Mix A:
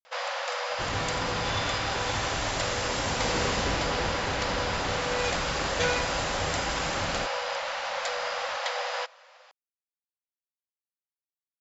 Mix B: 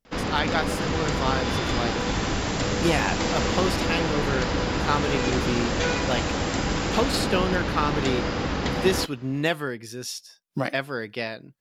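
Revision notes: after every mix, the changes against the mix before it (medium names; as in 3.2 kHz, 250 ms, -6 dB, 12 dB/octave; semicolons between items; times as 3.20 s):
speech: unmuted; first sound: remove brick-wall FIR high-pass 490 Hz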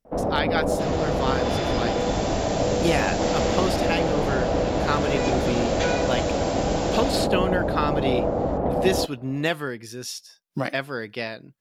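first sound: add resonant low-pass 660 Hz, resonance Q 3.7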